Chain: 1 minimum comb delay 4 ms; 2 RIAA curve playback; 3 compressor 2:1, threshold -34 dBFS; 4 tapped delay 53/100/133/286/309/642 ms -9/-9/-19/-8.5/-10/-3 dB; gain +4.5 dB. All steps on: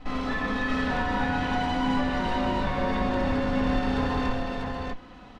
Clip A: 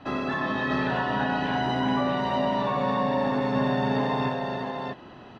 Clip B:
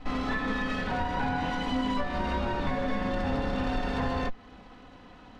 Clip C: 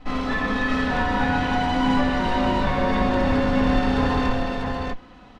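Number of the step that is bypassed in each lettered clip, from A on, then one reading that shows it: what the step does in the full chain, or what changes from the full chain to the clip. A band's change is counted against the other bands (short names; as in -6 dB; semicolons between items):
1, 500 Hz band +3.0 dB; 4, echo-to-direct 0.0 dB to none; 3, mean gain reduction 4.0 dB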